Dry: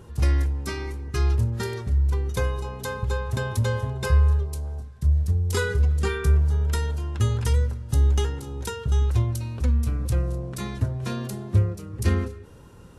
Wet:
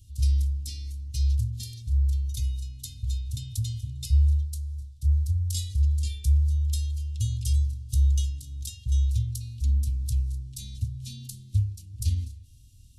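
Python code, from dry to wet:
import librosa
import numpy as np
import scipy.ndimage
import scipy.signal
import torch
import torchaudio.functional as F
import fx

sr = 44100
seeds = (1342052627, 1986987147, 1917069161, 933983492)

y = scipy.signal.sosfilt(scipy.signal.cheby2(4, 60, [460.0, 1400.0], 'bandstop', fs=sr, output='sos'), x)
y = fx.fixed_phaser(y, sr, hz=430.0, stages=4)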